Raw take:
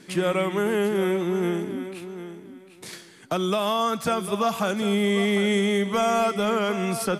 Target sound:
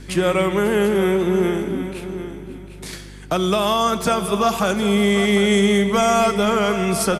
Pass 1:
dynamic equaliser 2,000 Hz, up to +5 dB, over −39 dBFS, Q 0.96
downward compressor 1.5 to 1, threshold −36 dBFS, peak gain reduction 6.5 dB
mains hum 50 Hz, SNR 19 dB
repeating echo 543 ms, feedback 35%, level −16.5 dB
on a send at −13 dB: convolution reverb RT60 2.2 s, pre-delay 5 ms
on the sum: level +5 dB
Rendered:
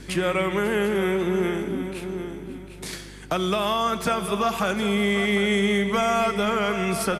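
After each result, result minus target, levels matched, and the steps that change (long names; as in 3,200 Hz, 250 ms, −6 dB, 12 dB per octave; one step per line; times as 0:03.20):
downward compressor: peak gain reduction +6.5 dB; 2,000 Hz band +3.5 dB
remove: downward compressor 1.5 to 1, threshold −36 dBFS, peak gain reduction 6.5 dB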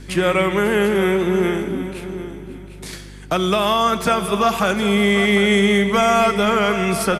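2,000 Hz band +3.0 dB
change: dynamic equaliser 6,800 Hz, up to +5 dB, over −39 dBFS, Q 0.96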